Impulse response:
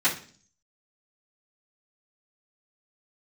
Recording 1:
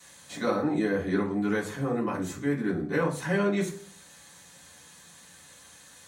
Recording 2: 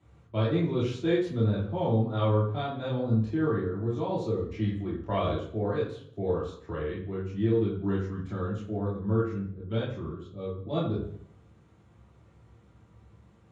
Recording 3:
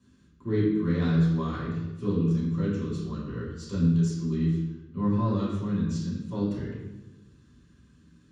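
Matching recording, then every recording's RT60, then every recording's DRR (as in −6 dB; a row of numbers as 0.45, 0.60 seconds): 1; 0.45, 0.60, 1.1 seconds; −14.5, −7.5, −9.0 decibels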